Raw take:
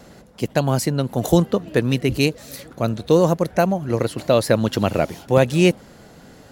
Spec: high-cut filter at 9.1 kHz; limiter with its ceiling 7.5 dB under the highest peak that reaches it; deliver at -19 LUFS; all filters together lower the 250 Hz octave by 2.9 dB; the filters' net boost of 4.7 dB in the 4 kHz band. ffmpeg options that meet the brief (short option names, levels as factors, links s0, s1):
-af "lowpass=9100,equalizer=f=250:t=o:g=-4.5,equalizer=f=4000:t=o:g=6,volume=1.68,alimiter=limit=0.562:level=0:latency=1"